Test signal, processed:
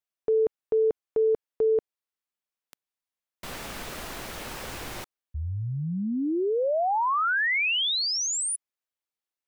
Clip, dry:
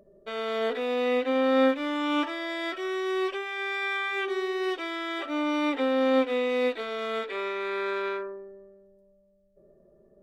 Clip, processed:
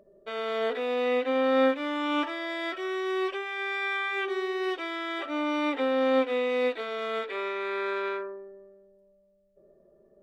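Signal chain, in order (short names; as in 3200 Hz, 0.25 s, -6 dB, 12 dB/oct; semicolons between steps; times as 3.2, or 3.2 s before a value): tone controls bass -6 dB, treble -4 dB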